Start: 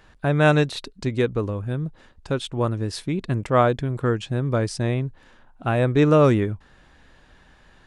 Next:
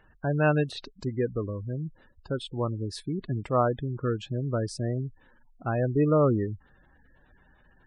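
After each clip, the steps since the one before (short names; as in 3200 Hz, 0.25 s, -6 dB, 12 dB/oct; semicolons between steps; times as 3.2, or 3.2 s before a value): spectral gate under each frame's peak -20 dB strong; gain -6 dB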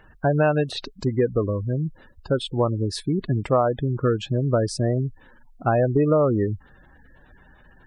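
dynamic EQ 680 Hz, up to +6 dB, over -39 dBFS, Q 1.2; compressor 6:1, threshold -24 dBFS, peak gain reduction 9.5 dB; gain +8 dB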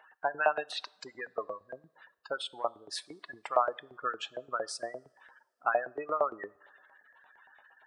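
LFO high-pass saw up 8.7 Hz 670–2000 Hz; two-slope reverb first 0.57 s, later 2.4 s, from -19 dB, DRR 19.5 dB; gain -7 dB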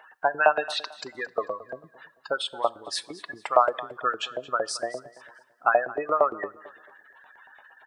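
feedback echo 0.222 s, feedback 32%, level -18 dB; gain +7.5 dB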